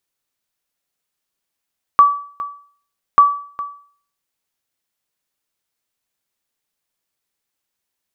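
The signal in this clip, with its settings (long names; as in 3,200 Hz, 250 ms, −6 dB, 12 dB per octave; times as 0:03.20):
ping with an echo 1,150 Hz, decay 0.49 s, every 1.19 s, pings 2, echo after 0.41 s, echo −16.5 dB −2 dBFS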